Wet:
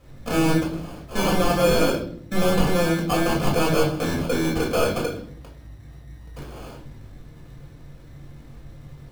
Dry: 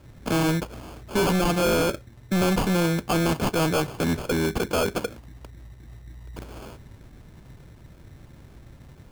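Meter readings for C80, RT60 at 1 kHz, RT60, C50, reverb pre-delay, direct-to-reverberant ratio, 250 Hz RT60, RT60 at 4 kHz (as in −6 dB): 11.5 dB, 0.50 s, 0.60 s, 7.0 dB, 4 ms, −3.5 dB, 0.90 s, 0.45 s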